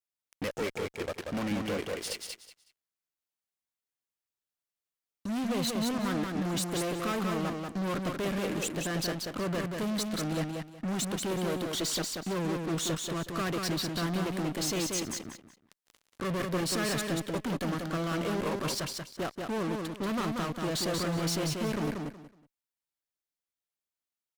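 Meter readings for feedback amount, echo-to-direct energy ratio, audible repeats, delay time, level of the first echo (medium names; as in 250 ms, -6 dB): 23%, -4.0 dB, 3, 185 ms, -4.0 dB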